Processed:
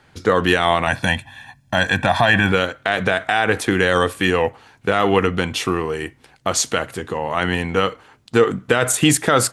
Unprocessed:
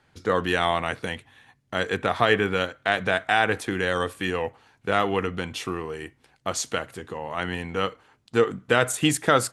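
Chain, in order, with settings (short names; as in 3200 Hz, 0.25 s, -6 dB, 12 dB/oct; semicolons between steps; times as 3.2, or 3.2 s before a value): 0.87–2.52 comb 1.2 ms, depth 90%; maximiser +12 dB; gain -2.5 dB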